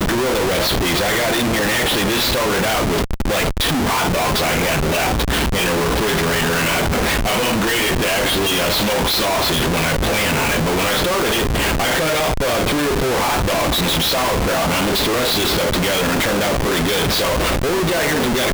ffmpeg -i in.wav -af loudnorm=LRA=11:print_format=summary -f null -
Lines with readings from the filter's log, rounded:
Input Integrated:    -17.1 LUFS
Input True Peak:     -10.5 dBTP
Input LRA:             0.6 LU
Input Threshold:     -27.1 LUFS